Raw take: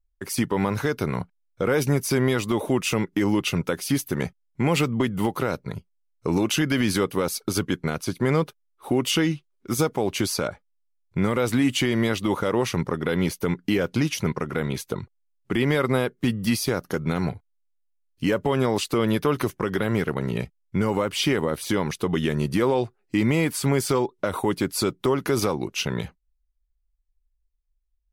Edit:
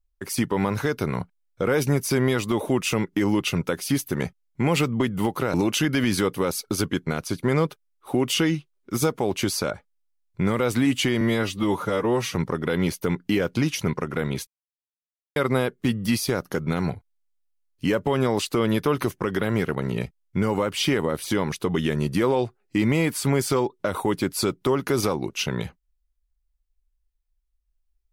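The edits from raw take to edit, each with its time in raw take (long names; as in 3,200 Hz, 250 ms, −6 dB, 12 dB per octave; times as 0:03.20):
0:05.54–0:06.31: remove
0:11.98–0:12.74: time-stretch 1.5×
0:14.86–0:15.75: silence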